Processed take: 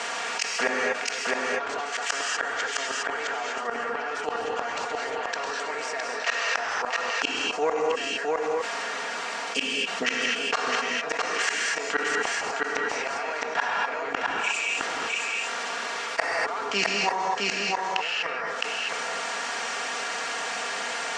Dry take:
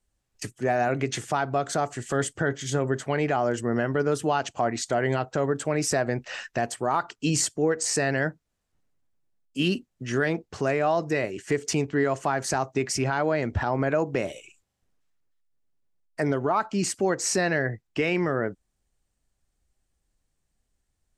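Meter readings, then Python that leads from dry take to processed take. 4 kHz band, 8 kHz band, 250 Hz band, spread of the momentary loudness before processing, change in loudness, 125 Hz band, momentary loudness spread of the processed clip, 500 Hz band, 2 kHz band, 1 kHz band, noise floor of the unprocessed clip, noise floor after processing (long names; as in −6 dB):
+7.5 dB, −1.5 dB, −11.0 dB, 6 LU, −0.5 dB, −22.0 dB, 5 LU, −4.5 dB, +6.0 dB, +1.5 dB, −78 dBFS, −32 dBFS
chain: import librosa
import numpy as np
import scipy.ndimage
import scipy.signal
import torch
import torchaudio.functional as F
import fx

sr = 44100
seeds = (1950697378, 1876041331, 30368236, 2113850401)

p1 = fx.bin_compress(x, sr, power=0.6)
p2 = scipy.signal.sosfilt(scipy.signal.butter(2, 880.0, 'highpass', fs=sr, output='sos'), p1)
p3 = p2 + 0.74 * np.pad(p2, (int(4.3 * sr / 1000.0), 0))[:len(p2)]
p4 = fx.rider(p3, sr, range_db=10, speed_s=0.5)
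p5 = p3 + (p4 * librosa.db_to_amplitude(0.0))
p6 = fx.gate_flip(p5, sr, shuts_db=-12.0, range_db=-33)
p7 = fx.air_absorb(p6, sr, metres=140.0)
p8 = p7 + fx.echo_single(p7, sr, ms=662, db=-6.0, dry=0)
p9 = fx.rev_gated(p8, sr, seeds[0], gate_ms=270, shape='rising', drr_db=2.0)
y = fx.env_flatten(p9, sr, amount_pct=70)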